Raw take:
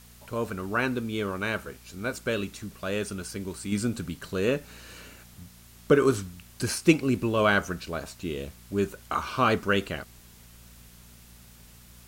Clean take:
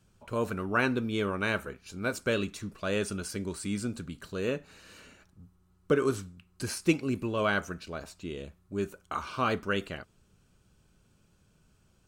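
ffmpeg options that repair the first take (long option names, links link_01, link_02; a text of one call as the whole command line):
ffmpeg -i in.wav -af "bandreject=frequency=58.8:width_type=h:width=4,bandreject=frequency=117.6:width_type=h:width=4,bandreject=frequency=176.4:width_type=h:width=4,bandreject=frequency=235.2:width_type=h:width=4,afwtdn=0.002,asetnsamples=nb_out_samples=441:pad=0,asendcmd='3.72 volume volume -5.5dB',volume=0dB" out.wav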